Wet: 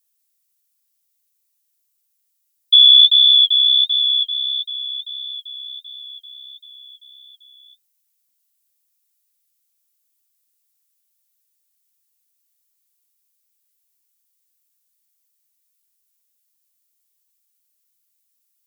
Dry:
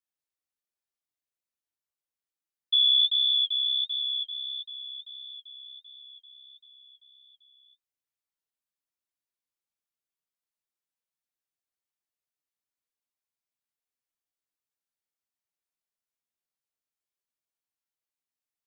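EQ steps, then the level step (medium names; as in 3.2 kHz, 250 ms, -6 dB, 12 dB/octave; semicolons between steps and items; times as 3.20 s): tilt EQ +6 dB/octave; +2.0 dB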